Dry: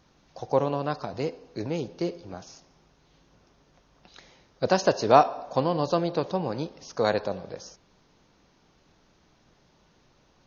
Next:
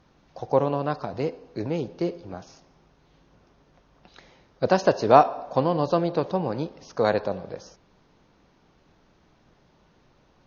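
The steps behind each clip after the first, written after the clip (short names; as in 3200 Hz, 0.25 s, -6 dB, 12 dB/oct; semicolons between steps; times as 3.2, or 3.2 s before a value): LPF 2700 Hz 6 dB/oct; gain +2.5 dB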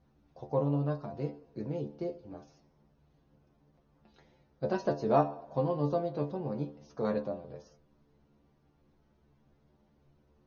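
tilt shelf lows +6 dB, about 680 Hz; metallic resonator 71 Hz, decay 0.28 s, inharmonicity 0.002; gain -3 dB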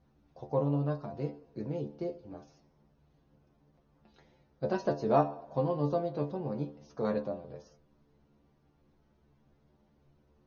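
nothing audible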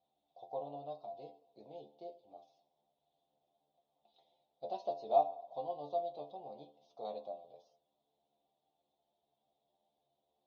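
double band-pass 1600 Hz, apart 2.3 oct; gain +2 dB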